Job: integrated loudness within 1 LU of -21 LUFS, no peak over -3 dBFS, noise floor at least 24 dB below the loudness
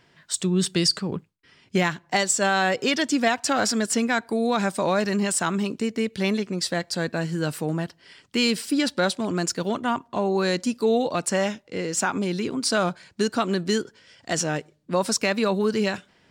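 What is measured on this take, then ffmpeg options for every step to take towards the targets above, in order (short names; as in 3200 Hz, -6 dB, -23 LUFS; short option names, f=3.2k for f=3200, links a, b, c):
loudness -24.5 LUFS; peak -9.0 dBFS; loudness target -21.0 LUFS
-> -af "volume=3.5dB"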